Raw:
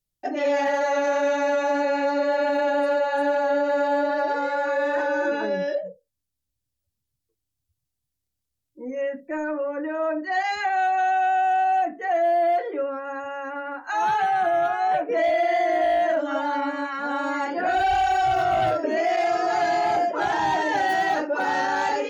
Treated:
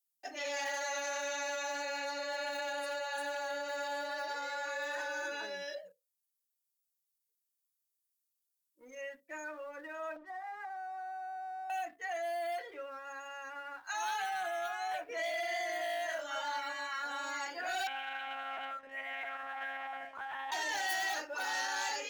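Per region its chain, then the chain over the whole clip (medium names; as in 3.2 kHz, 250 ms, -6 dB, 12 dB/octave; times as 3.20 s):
10.16–11.70 s: jump at every zero crossing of -41 dBFS + low-pass 1.3 kHz 24 dB/octave + compression, threshold -25 dBFS
16.06–17.05 s: peaking EQ 300 Hz -7.5 dB 0.83 oct + doubling 24 ms -2.5 dB
17.87–20.52 s: low-pass 1.7 kHz + peaking EQ 470 Hz -11.5 dB 1.2 oct + monotone LPC vocoder at 8 kHz 270 Hz
whole clip: differentiator; waveshaping leveller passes 1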